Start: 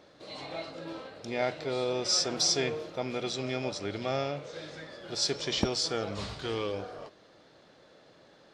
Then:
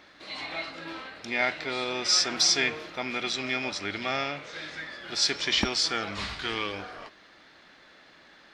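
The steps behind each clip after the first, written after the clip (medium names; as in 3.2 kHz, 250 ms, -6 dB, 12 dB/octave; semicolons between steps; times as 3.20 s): graphic EQ 125/500/2000/8000 Hz -12/-11/+7/-4 dB; trim +5.5 dB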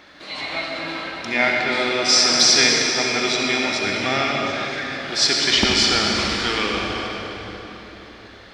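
reverberation RT60 3.9 s, pre-delay 60 ms, DRR -0.5 dB; trim +6.5 dB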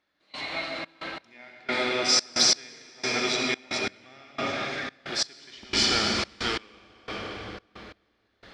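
trance gate "..xxx.x." 89 bpm -24 dB; trim -5.5 dB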